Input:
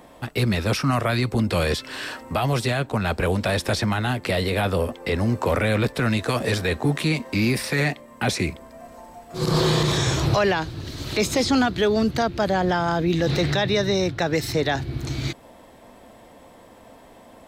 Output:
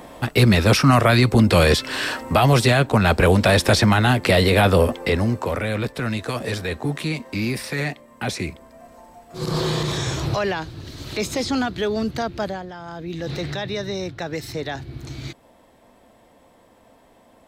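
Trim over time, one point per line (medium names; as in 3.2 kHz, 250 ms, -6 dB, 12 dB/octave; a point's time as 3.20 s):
4.94 s +7 dB
5.51 s -3 dB
12.44 s -3 dB
12.70 s -15.5 dB
13.31 s -6 dB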